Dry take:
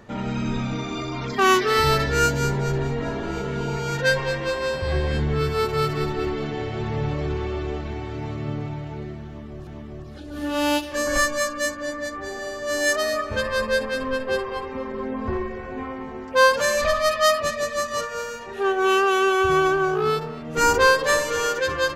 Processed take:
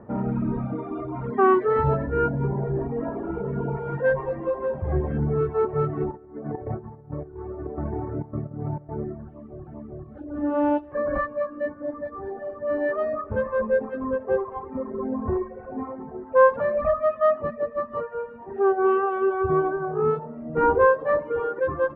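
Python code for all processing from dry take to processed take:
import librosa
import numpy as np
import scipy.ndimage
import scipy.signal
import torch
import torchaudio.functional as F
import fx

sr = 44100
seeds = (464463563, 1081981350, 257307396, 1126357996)

y = fx.chain(x, sr, fx.lowpass(hz=2100.0, slope=24),
    fx.chopper(hz=1.8, depth_pct=60, duty_pct=80),
    fx.over_compress(threshold_db=-30.0, ratio=-0.5), at=(6.11, 9.29))
y = fx.highpass(y, sr, hz=94.0, slope=6)
y = fx.dereverb_blind(y, sr, rt60_s=1.8)
y = scipy.signal.sosfilt(scipy.signal.bessel(4, 840.0, 'lowpass', norm='mag', fs=sr, output='sos'), y)
y = y * librosa.db_to_amplitude(4.5)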